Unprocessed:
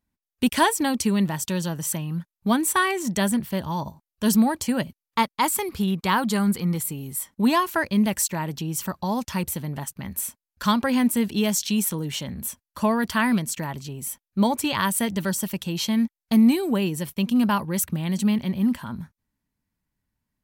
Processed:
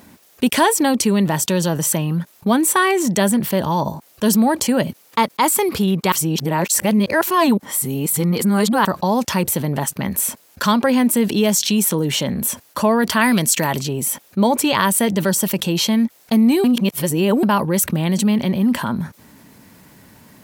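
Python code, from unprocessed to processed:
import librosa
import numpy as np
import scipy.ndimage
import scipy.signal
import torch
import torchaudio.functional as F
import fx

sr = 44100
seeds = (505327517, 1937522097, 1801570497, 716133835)

y = fx.high_shelf(x, sr, hz=2100.0, db=9.0, at=(13.21, 13.79))
y = fx.edit(y, sr, fx.reverse_span(start_s=6.12, length_s=2.73),
    fx.reverse_span(start_s=16.64, length_s=0.79), tone=tone)
y = scipy.signal.sosfilt(scipy.signal.butter(2, 130.0, 'highpass', fs=sr, output='sos'), y)
y = fx.peak_eq(y, sr, hz=500.0, db=5.5, octaves=1.3)
y = fx.env_flatten(y, sr, amount_pct=50)
y = F.gain(torch.from_numpy(y), 1.0).numpy()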